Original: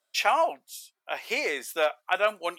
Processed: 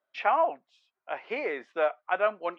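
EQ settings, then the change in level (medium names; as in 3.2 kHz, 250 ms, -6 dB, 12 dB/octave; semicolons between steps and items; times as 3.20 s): low-pass 1.8 kHz 12 dB/octave; distance through air 110 m; 0.0 dB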